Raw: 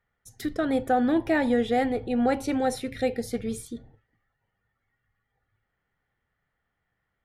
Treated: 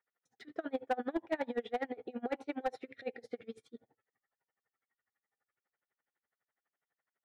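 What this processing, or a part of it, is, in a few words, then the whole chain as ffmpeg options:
helicopter radio: -af "highpass=360,lowpass=2.7k,aeval=exprs='val(0)*pow(10,-29*(0.5-0.5*cos(2*PI*12*n/s))/20)':c=same,asoftclip=type=hard:threshold=-21.5dB,volume=-3.5dB"

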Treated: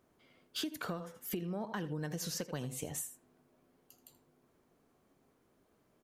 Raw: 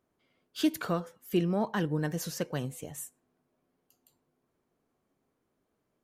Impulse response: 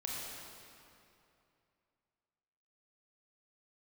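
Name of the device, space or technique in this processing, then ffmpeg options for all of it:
serial compression, leveller first: -filter_complex "[0:a]asettb=1/sr,asplit=3[a][b][c];[a]atrim=end=1.844[d];[b]atrim=start=1.84:end=3.02,asetpts=PTS-STARTPTS,afade=t=in:d=0.004:c=qsin,afade=t=out:st=1.176:d=0.004:c=qsin,equalizer=f=5k:t=o:w=1.4:g=4[e];[c]atrim=start=3.016[f];[d][e]acrossfade=d=0.004:c1=hsin:c2=qsin[g];[g][f]acrossfade=d=0.004:c1=qsin:c2=hsin,aecho=1:1:80:0.178,acompressor=threshold=-33dB:ratio=2.5,acompressor=threshold=-44dB:ratio=4,volume=6.5dB"

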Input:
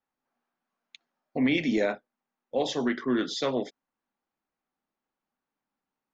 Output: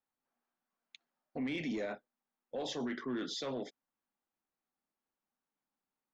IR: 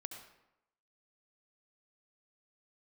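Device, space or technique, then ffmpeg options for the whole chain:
soft clipper into limiter: -af "asoftclip=type=tanh:threshold=-17dB,alimiter=level_in=1dB:limit=-24dB:level=0:latency=1:release=16,volume=-1dB,volume=-6dB"

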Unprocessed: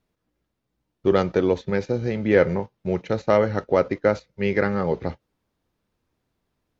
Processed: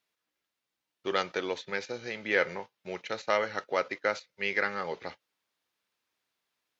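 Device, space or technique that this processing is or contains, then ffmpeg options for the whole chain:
filter by subtraction: -filter_complex "[0:a]asplit=2[a][b];[b]lowpass=2.7k,volume=-1[c];[a][c]amix=inputs=2:normalize=0"

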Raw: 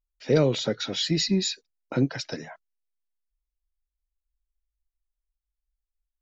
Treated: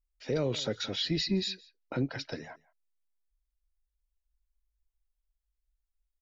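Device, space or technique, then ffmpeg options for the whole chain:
car stereo with a boomy subwoofer: -filter_complex "[0:a]asettb=1/sr,asplit=3[a][b][c];[a]atrim=end=0.964[d];[b]atrim=start=0.96:end=2.44,asetpts=PTS-STARTPTS,afade=t=in:d=0.004:c=qsin,afade=t=out:st=1.476:d=0.004:c=qsin,lowpass=f=5.1k:w=0.5412,lowpass=f=5.1k:w=1.3066[e];[c]atrim=start=2.436[f];[d][e]acrossfade=d=0.004:c1=hsin:c2=qsin[g];[g][f]acrossfade=d=0.004:c1=qsin:c2=hsin,lowshelf=f=110:t=q:w=1.5:g=6.5,aecho=1:1:168:0.0668,alimiter=limit=-16.5dB:level=0:latency=1:release=93,volume=-4dB"

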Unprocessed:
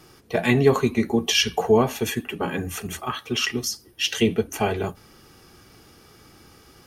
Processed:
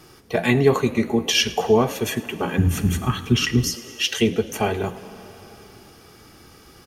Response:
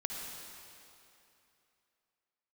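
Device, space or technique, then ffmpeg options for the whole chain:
ducked reverb: -filter_complex "[0:a]asplit=3[a][b][c];[1:a]atrim=start_sample=2205[d];[b][d]afir=irnorm=-1:irlink=0[e];[c]apad=whole_len=302719[f];[e][f]sidechaincompress=threshold=-25dB:ratio=8:attack=21:release=1050,volume=-8dB[g];[a][g]amix=inputs=2:normalize=0,asplit=3[h][i][j];[h]afade=t=out:st=2.57:d=0.02[k];[i]asubboost=boost=8:cutoff=210,afade=t=in:st=2.57:d=0.02,afade=t=out:st=3.73:d=0.02[l];[j]afade=t=in:st=3.73:d=0.02[m];[k][l][m]amix=inputs=3:normalize=0,asplit=6[n][o][p][q][r][s];[o]adelay=106,afreqshift=53,volume=-21dB[t];[p]adelay=212,afreqshift=106,volume=-25dB[u];[q]adelay=318,afreqshift=159,volume=-29dB[v];[r]adelay=424,afreqshift=212,volume=-33dB[w];[s]adelay=530,afreqshift=265,volume=-37.1dB[x];[n][t][u][v][w][x]amix=inputs=6:normalize=0"

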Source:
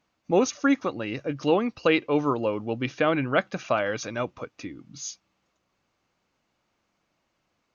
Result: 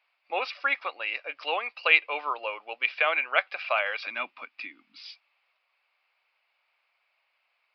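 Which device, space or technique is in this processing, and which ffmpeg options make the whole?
musical greeting card: -filter_complex "[0:a]asettb=1/sr,asplit=3[a][b][c];[a]atrim=end=4.064[d];[b]atrim=start=4.06:end=4.99,asetpts=PTS-STARTPTS,afade=t=in:d=0.004:c=qsin,afade=t=out:st=0.926:d=0.004:c=qsin,lowshelf=f=340:t=q:w=3:g=12.5[e];[c]atrim=start=4.986[f];[d][e]acrossfade=d=0.004:c1=hsin:c2=qsin[g];[g][f]acrossfade=d=0.004:c1=qsin:c2=hsin,aresample=11025,aresample=44100,highpass=f=660:w=0.5412,highpass=f=660:w=1.3066,equalizer=f=2.4k:t=o:w=0.52:g=11.5,volume=-1dB"

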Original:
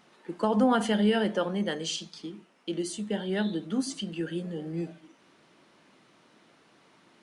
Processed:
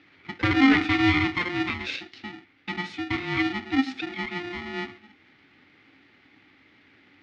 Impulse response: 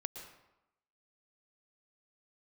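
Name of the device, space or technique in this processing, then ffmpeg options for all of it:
ring modulator pedal into a guitar cabinet: -af "aeval=exprs='val(0)*sgn(sin(2*PI*530*n/s))':c=same,highpass=90,equalizer=f=97:t=q:w=4:g=7,equalizer=f=180:t=q:w=4:g=-5,equalizer=f=280:t=q:w=4:g=10,equalizer=f=690:t=q:w=4:g=-9,equalizer=f=990:t=q:w=4:g=-9,equalizer=f=2.1k:t=q:w=4:g=10,lowpass=f=4.1k:w=0.5412,lowpass=f=4.1k:w=1.3066,volume=1.5dB"

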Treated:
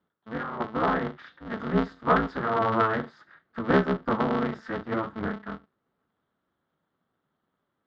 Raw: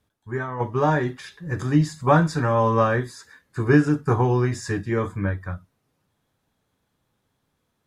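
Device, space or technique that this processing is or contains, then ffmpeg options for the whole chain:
ring modulator pedal into a guitar cabinet: -filter_complex "[0:a]asettb=1/sr,asplit=3[a][b][c];[a]atrim=end=1.924[d];[b]atrim=start=1.92:end=2.61,asetpts=PTS-STARTPTS,afade=t=in:d=0.004:c=qsin,afade=t=out:st=0.686:d=0.004:c=qsin,highpass=160[e];[c]atrim=start=2.606[f];[d][e]acrossfade=d=0.004:c1=hsin:c2=qsin[g];[g][f]acrossfade=d=0.004:c1=qsin:c2=hsin,aeval=exprs='val(0)*sgn(sin(2*PI*110*n/s))':c=same,highpass=88,equalizer=f=160:t=q:w=4:g=4,equalizer=f=1.3k:t=q:w=4:g=7,equalizer=f=2.5k:t=q:w=4:g=-9,lowpass=f=3.4k:w=0.5412,lowpass=f=3.4k:w=1.3066,volume=-5.5dB"

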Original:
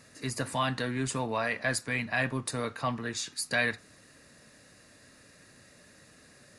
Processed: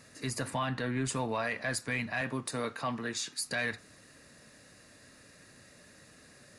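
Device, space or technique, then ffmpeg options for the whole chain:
soft clipper into limiter: -filter_complex "[0:a]asoftclip=type=tanh:threshold=-16.5dB,alimiter=limit=-23.5dB:level=0:latency=1:release=72,asettb=1/sr,asplit=3[a][b][c];[a]atrim=end=0.504[d];[b]atrim=start=0.5:end=1.05,asetpts=PTS-STARTPTS,afade=t=in:d=0.004:c=qsin,afade=t=out:st=0.546:d=0.004:c=qsin,bass=f=250:g=1,treble=f=4k:g=-9[e];[c]atrim=start=1.046[f];[d][e]acrossfade=d=0.004:c1=hsin:c2=qsin[g];[g][f]acrossfade=d=0.004:c1=qsin:c2=hsin,asettb=1/sr,asplit=3[h][i][j];[h]atrim=end=2.214[k];[i]atrim=start=2.21:end=3.47,asetpts=PTS-STARTPTS,afade=t=in:d=0.004:c=qsin,afade=t=out:st=1.256:d=0.004:c=qsin,highpass=140[l];[j]atrim=start=3.466[m];[k][l]acrossfade=d=0.004:c1=hsin:c2=qsin[n];[n][m]acrossfade=d=0.004:c1=qsin:c2=hsin"

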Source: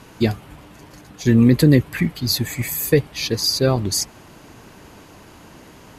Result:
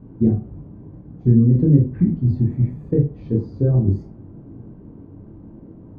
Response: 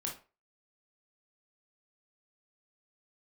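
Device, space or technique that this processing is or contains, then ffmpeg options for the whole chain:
television next door: -filter_complex "[0:a]acompressor=threshold=-15dB:ratio=6,lowpass=290[a];[1:a]atrim=start_sample=2205[b];[a][b]afir=irnorm=-1:irlink=0,volume=6dB"

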